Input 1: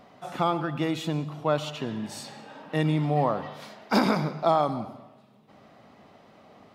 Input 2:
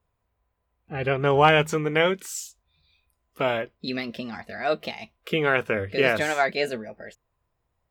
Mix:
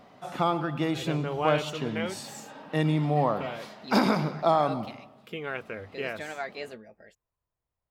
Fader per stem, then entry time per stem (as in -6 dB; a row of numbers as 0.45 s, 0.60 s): -0.5 dB, -12.5 dB; 0.00 s, 0.00 s